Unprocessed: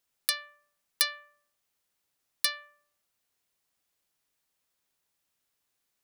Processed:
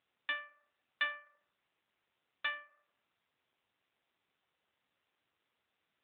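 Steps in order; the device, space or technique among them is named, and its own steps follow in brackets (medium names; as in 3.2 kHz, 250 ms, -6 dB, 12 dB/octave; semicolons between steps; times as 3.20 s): telephone (band-pass 270–3100 Hz; AMR-NB 7.4 kbps 8 kHz)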